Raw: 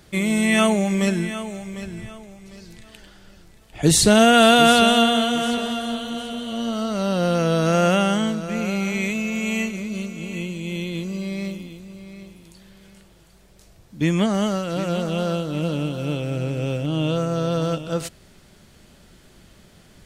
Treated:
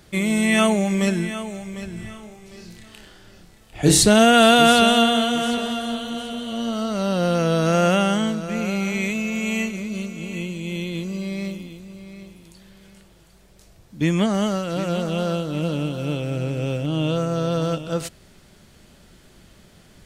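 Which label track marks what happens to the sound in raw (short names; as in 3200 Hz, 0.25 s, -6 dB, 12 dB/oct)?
1.930000	4.030000	flutter echo walls apart 4.8 m, dies away in 0.34 s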